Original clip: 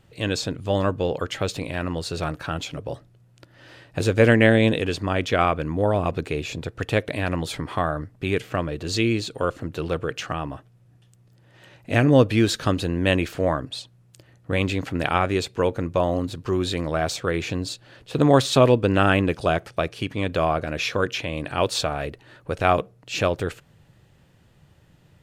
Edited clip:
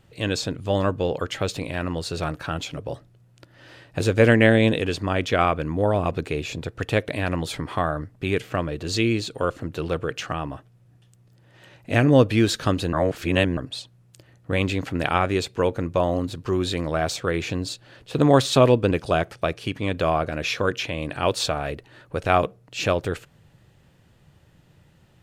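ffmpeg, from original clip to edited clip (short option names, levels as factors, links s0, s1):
-filter_complex "[0:a]asplit=4[s0][s1][s2][s3];[s0]atrim=end=12.932[s4];[s1]atrim=start=12.928:end=13.572,asetpts=PTS-STARTPTS,areverse[s5];[s2]atrim=start=13.568:end=18.912[s6];[s3]atrim=start=19.258[s7];[s4][s5]acrossfade=d=0.004:c1=hsin:c2=hsin[s8];[s8][s6]acrossfade=d=0.004:c1=hsin:c2=hsin[s9];[s9][s7]acrossfade=d=0.004:c1=hsin:c2=hsin"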